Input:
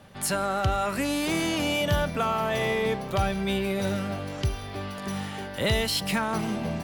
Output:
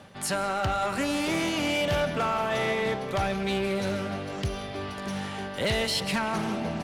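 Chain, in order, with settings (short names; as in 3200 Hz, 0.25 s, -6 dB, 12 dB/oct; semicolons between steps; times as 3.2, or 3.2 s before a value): LPF 11000 Hz 12 dB/oct; low shelf 83 Hz -9 dB; reverse; upward compressor, threshold -32 dBFS; reverse; speakerphone echo 0.18 s, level -12 dB; on a send at -13 dB: reverb RT60 3.0 s, pre-delay 0.1 s; on the sum: hard clip -21 dBFS, distortion -18 dB; Doppler distortion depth 0.18 ms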